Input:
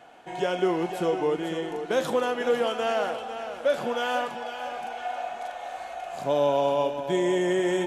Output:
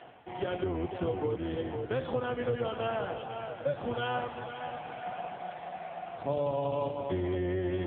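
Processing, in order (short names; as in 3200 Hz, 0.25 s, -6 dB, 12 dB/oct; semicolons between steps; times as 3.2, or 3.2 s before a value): octaver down 2 oct, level +3 dB; reverse; upward compressor, threshold -32 dBFS; reverse; band-limited delay 67 ms, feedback 69%, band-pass 1100 Hz, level -20 dB; compressor 5:1, threshold -24 dBFS, peak gain reduction 7 dB; gain -2.5 dB; AMR-NB 5.9 kbps 8000 Hz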